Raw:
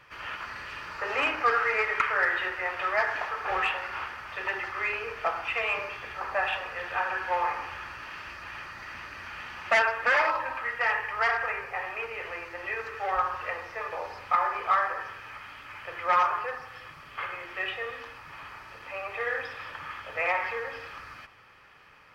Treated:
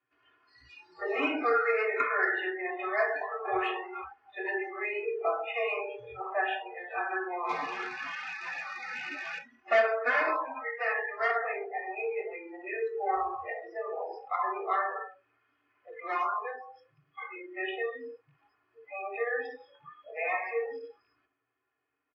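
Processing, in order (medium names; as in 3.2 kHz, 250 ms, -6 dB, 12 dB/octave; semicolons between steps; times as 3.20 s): rattle on loud lows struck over -50 dBFS, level -29 dBFS; treble shelf 3 kHz -11 dB; comb 2.8 ms, depth 84%; in parallel at -0.5 dB: compression 6:1, threshold -40 dBFS, peak gain reduction 21 dB; 7.49–9.39 s: on the sum: overdrive pedal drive 16 dB, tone 3.6 kHz, clips at -21 dBFS; cabinet simulation 170–6700 Hz, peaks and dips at 180 Hz -4 dB, 260 Hz +4 dB, 450 Hz +3 dB, 1.1 kHz -3 dB; tape echo 66 ms, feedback 65%, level -11 dB, low-pass 2.4 kHz; on a send at -3 dB: reverberation, pre-delay 3 ms; on the sum: spectral noise reduction 30 dB; trim -5.5 dB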